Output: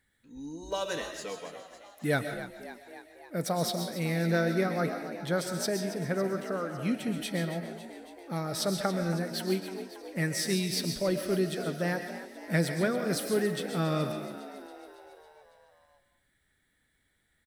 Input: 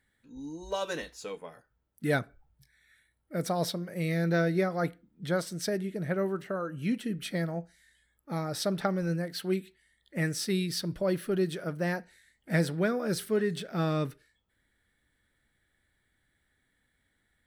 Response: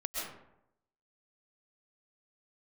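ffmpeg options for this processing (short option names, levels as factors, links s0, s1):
-filter_complex "[0:a]asplit=8[s0][s1][s2][s3][s4][s5][s6][s7];[s1]adelay=277,afreqshift=59,volume=0.224[s8];[s2]adelay=554,afreqshift=118,volume=0.141[s9];[s3]adelay=831,afreqshift=177,volume=0.0891[s10];[s4]adelay=1108,afreqshift=236,volume=0.0562[s11];[s5]adelay=1385,afreqshift=295,volume=0.0351[s12];[s6]adelay=1662,afreqshift=354,volume=0.0221[s13];[s7]adelay=1939,afreqshift=413,volume=0.014[s14];[s0][s8][s9][s10][s11][s12][s13][s14]amix=inputs=8:normalize=0,asplit=2[s15][s16];[1:a]atrim=start_sample=2205,afade=t=out:st=0.36:d=0.01,atrim=end_sample=16317,highshelf=f=2600:g=11[s17];[s16][s17]afir=irnorm=-1:irlink=0,volume=0.316[s18];[s15][s18]amix=inputs=2:normalize=0,volume=0.75"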